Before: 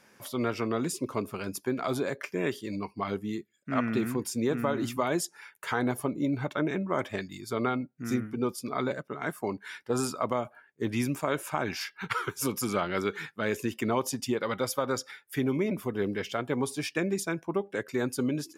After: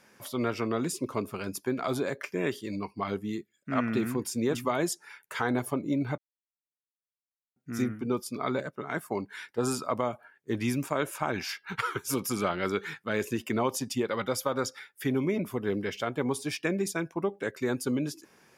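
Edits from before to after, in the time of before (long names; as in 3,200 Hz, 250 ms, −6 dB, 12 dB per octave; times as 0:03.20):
0:04.55–0:04.87: remove
0:06.50–0:07.88: silence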